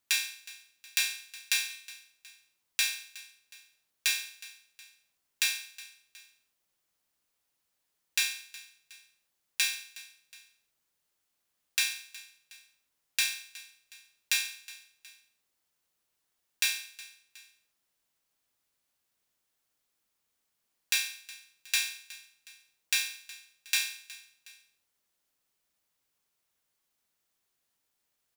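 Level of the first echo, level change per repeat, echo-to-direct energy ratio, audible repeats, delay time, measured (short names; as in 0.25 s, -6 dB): -19.0 dB, -6.0 dB, -18.0 dB, 2, 0.366 s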